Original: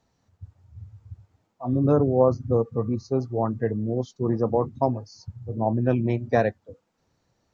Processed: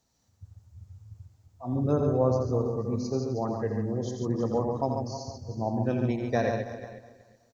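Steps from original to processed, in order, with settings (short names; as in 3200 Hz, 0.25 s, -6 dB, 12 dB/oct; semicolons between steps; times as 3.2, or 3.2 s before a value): regenerating reverse delay 0.185 s, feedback 44%, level -12 dB; tone controls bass +1 dB, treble +13 dB; tapped delay 85/141/326/479 ms -7/-5.5/-17/-18.5 dB; gain -6.5 dB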